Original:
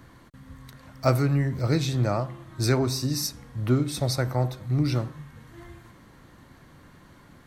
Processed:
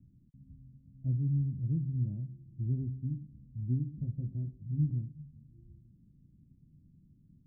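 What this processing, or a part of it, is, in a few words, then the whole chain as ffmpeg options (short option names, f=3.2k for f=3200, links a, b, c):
the neighbour's flat through the wall: -filter_complex "[0:a]lowpass=f=230:w=0.5412,lowpass=f=230:w=1.3066,equalizer=f=160:t=o:w=0.77:g=3.5,asettb=1/sr,asplit=3[a][b][c];[a]atrim=end=3.924[d];[b]atrim=start=3.92:end=4.91,asetpts=PTS-STARTPTS,afade=t=in:d=0.004:c=qsin,afade=t=out:st=0.986:d=0.004:c=qsin,asplit=2[e][f];[f]adelay=19,volume=-3dB[g];[e][g]amix=inputs=2:normalize=0,atrim=end_sample=43659[h];[c]atrim=start=4.906[i];[d][h]acrossfade=d=0.004:c1=hsin:c2=qsin[j];[j][i]acrossfade=d=0.004:c1=qsin:c2=hsin,volume=-8.5dB"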